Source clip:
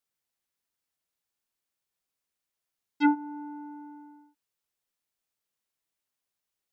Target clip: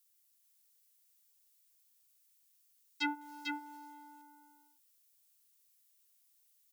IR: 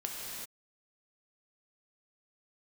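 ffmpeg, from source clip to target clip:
-filter_complex "[0:a]aderivative,acrossover=split=700|1800[link_01][link_02][link_03];[link_02]alimiter=level_in=23dB:limit=-24dB:level=0:latency=1:release=288,volume=-23dB[link_04];[link_01][link_04][link_03]amix=inputs=3:normalize=0,asettb=1/sr,asplit=3[link_05][link_06][link_07];[link_05]atrim=end=3.214[link_08];[link_06]atrim=start=3.21:end=3.77,asetpts=PTS-STARTPTS,afade=type=in:duration=0.004:curve=qsin,afade=type=out:start_time=0.556:duration=0.004:curve=qsin,acrusher=bits=3:mode=log:mix=0:aa=0.000001[link_09];[link_07]atrim=start=3.766[link_10];[link_08][link_09]acrossfade=duration=0.004:curve1=hsin:curve2=qsin[link_11];[link_11][link_10]acrossfade=duration=0.004:curve1=qsin:curve2=hsin,aecho=1:1:447:0.596,volume=11.5dB"

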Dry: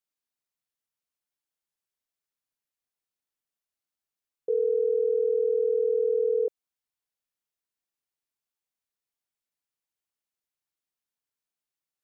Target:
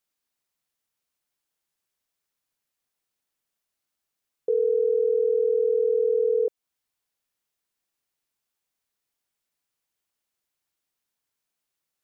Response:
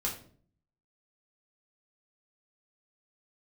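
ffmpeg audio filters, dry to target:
-af "alimiter=limit=-23dB:level=0:latency=1:release=300,volume=7dB"

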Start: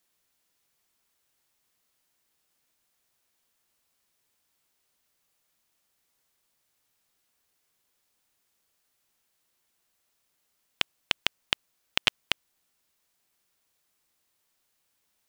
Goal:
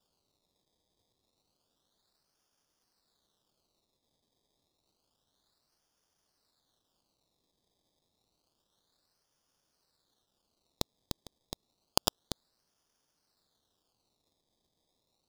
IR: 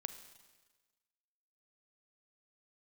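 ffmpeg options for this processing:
-af "acrusher=samples=21:mix=1:aa=0.000001:lfo=1:lforange=21:lforate=0.29,highshelf=frequency=3000:width_type=q:width=3:gain=9.5,volume=-7dB"

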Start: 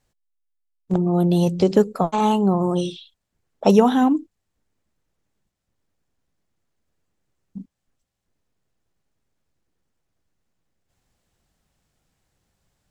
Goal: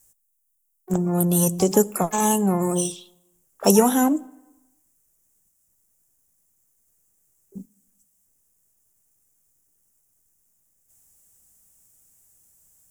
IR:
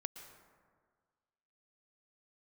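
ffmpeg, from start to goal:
-filter_complex "[0:a]aexciter=amount=12.2:drive=7.4:freq=6300,asplit=2[link_01][link_02];[link_02]asetrate=88200,aresample=44100,atempo=0.5,volume=-17dB[link_03];[link_01][link_03]amix=inputs=2:normalize=0,asplit=2[link_04][link_05];[1:a]atrim=start_sample=2205,asetrate=70560,aresample=44100[link_06];[link_05][link_06]afir=irnorm=-1:irlink=0,volume=-10dB[link_07];[link_04][link_07]amix=inputs=2:normalize=0,volume=-3.5dB"

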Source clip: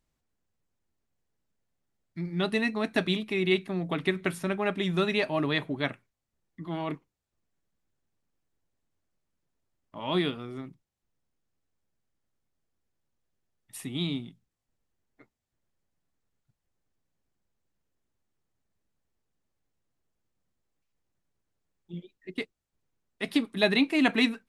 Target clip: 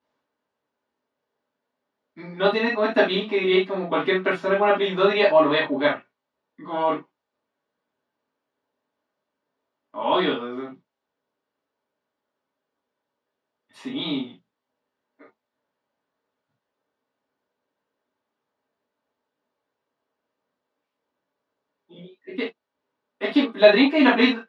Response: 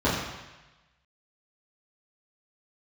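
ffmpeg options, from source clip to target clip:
-filter_complex "[0:a]highpass=520,lowpass=4600[link_01];[1:a]atrim=start_sample=2205,atrim=end_sample=3528[link_02];[link_01][link_02]afir=irnorm=-1:irlink=0,volume=-4dB"

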